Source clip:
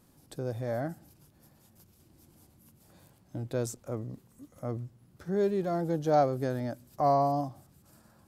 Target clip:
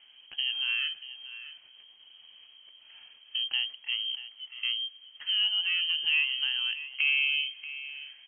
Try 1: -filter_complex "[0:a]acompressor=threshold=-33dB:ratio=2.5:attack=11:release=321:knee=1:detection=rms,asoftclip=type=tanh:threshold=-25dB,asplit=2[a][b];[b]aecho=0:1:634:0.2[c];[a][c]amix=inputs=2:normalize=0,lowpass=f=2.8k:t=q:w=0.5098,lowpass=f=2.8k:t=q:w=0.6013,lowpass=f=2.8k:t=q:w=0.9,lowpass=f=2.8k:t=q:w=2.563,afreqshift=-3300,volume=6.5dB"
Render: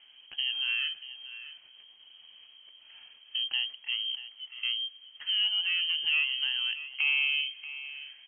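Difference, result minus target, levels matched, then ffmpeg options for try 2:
soft clip: distortion +14 dB
-filter_complex "[0:a]acompressor=threshold=-33dB:ratio=2.5:attack=11:release=321:knee=1:detection=rms,asoftclip=type=tanh:threshold=-17dB,asplit=2[a][b];[b]aecho=0:1:634:0.2[c];[a][c]amix=inputs=2:normalize=0,lowpass=f=2.8k:t=q:w=0.5098,lowpass=f=2.8k:t=q:w=0.6013,lowpass=f=2.8k:t=q:w=0.9,lowpass=f=2.8k:t=q:w=2.563,afreqshift=-3300,volume=6.5dB"

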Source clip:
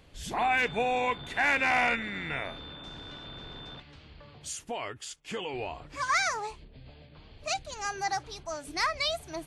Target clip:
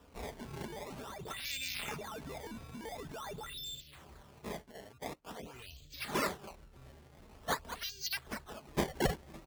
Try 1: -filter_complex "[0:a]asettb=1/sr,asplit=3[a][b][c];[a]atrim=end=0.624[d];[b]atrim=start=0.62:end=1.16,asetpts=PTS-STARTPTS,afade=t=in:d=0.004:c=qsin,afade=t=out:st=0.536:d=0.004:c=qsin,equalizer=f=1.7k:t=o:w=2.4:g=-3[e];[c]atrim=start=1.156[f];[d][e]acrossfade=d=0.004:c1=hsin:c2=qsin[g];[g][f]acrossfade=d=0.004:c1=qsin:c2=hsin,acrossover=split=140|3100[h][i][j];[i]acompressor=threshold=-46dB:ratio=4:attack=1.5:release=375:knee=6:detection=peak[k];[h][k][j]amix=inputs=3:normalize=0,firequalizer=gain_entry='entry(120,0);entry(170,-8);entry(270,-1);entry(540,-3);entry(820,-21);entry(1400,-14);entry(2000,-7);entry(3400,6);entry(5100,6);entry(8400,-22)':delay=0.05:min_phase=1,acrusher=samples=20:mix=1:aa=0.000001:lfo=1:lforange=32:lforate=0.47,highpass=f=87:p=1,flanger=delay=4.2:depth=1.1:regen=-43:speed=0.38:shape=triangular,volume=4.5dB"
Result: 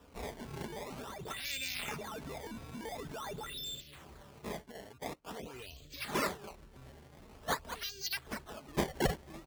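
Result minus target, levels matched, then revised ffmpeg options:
compressor: peak gain reduction -9 dB
-filter_complex "[0:a]asettb=1/sr,asplit=3[a][b][c];[a]atrim=end=0.624[d];[b]atrim=start=0.62:end=1.16,asetpts=PTS-STARTPTS,afade=t=in:d=0.004:c=qsin,afade=t=out:st=0.536:d=0.004:c=qsin,equalizer=f=1.7k:t=o:w=2.4:g=-3[e];[c]atrim=start=1.156[f];[d][e]acrossfade=d=0.004:c1=hsin:c2=qsin[g];[g][f]acrossfade=d=0.004:c1=qsin:c2=hsin,acrossover=split=140|3100[h][i][j];[i]acompressor=threshold=-58dB:ratio=4:attack=1.5:release=375:knee=6:detection=peak[k];[h][k][j]amix=inputs=3:normalize=0,firequalizer=gain_entry='entry(120,0);entry(170,-8);entry(270,-1);entry(540,-3);entry(820,-21);entry(1400,-14);entry(2000,-7);entry(3400,6);entry(5100,6);entry(8400,-22)':delay=0.05:min_phase=1,acrusher=samples=20:mix=1:aa=0.000001:lfo=1:lforange=32:lforate=0.47,highpass=f=87:p=1,flanger=delay=4.2:depth=1.1:regen=-43:speed=0.38:shape=triangular,volume=4.5dB"

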